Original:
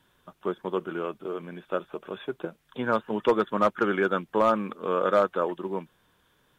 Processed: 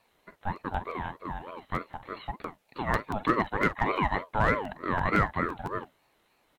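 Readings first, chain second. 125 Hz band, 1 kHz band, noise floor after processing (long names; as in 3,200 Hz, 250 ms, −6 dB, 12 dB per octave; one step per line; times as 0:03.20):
+6.5 dB, −0.5 dB, −70 dBFS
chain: double-tracking delay 46 ms −13.5 dB
regular buffer underruns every 0.17 s, samples 512, repeat, from 0:00.55
ring modulator whose carrier an LFO sweeps 620 Hz, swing 35%, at 3.3 Hz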